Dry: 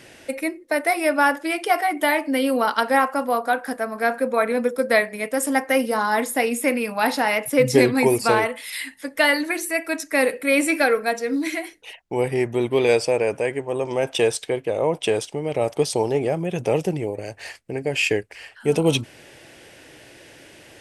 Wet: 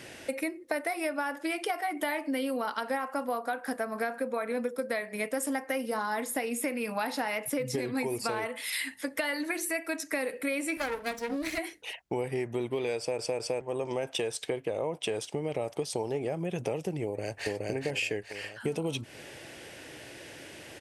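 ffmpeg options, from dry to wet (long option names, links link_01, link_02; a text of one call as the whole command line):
ffmpeg -i in.wav -filter_complex "[0:a]asettb=1/sr,asplit=3[link_01][link_02][link_03];[link_01]atrim=end=10.774[link_04];[link_02]atrim=start=10.77:end=11.58,asetpts=PTS-STARTPTS,afade=type=in:duration=0.004:curve=qsin,afade=type=out:start_time=0.806:duration=0.004:curve=qsin,aeval=exprs='max(val(0),0)':channel_layout=same[link_05];[link_03]atrim=start=11.576[link_06];[link_04][link_05]acrossfade=duration=0.004:curve1=hsin:curve2=qsin[link_07];[link_07][link_06]acrossfade=duration=0.004:curve1=qsin:curve2=hsin,asplit=2[link_08][link_09];[link_09]afade=type=in:start_time=17.04:duration=0.01,afade=type=out:start_time=17.48:duration=0.01,aecho=0:1:420|840|1260|1680|2100:0.944061|0.377624|0.15105|0.0604199|0.024168[link_10];[link_08][link_10]amix=inputs=2:normalize=0,asplit=4[link_11][link_12][link_13][link_14];[link_11]atrim=end=13.192[link_15];[link_12]atrim=start=12.978:end=13.192[link_16];[link_13]atrim=start=12.978:end=13.192[link_17];[link_14]atrim=start=13.608[link_18];[link_15][link_16]acrossfade=duration=0.004:curve1=hsin:curve2=hsin[link_19];[link_19][link_17]acrossfade=duration=0.004:curve1=hsin:curve2=hsin[link_20];[link_20][link_18]acrossfade=duration=0.004:curve1=hsin:curve2=hsin,highpass=44,alimiter=limit=-10dB:level=0:latency=1:release=204,acompressor=threshold=-29dB:ratio=6" out.wav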